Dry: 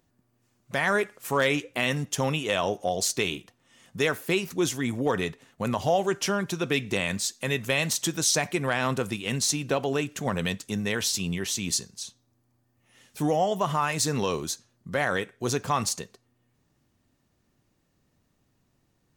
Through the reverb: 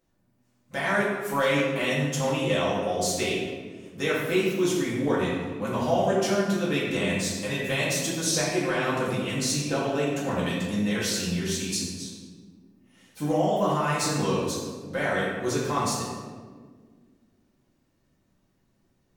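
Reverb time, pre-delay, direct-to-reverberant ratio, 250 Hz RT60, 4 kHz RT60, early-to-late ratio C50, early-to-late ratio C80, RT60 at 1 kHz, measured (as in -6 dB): 1.6 s, 4 ms, -8.5 dB, 2.6 s, 0.95 s, 0.0 dB, 2.0 dB, 1.4 s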